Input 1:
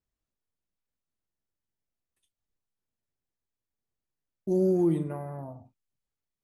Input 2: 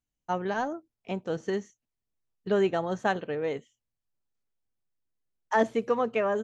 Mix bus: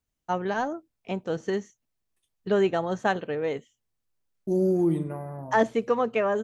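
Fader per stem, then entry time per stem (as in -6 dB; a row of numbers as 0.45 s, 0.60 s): +1.0 dB, +2.0 dB; 0.00 s, 0.00 s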